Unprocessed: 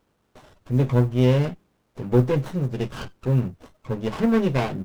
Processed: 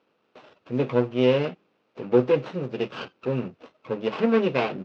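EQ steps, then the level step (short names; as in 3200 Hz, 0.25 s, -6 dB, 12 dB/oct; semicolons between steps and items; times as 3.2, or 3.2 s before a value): speaker cabinet 270–4700 Hz, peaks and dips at 490 Hz +4 dB, 1300 Hz +4 dB, 2600 Hz +8 dB; tilt shelf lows +3 dB; high shelf 3700 Hz +7 dB; -1.5 dB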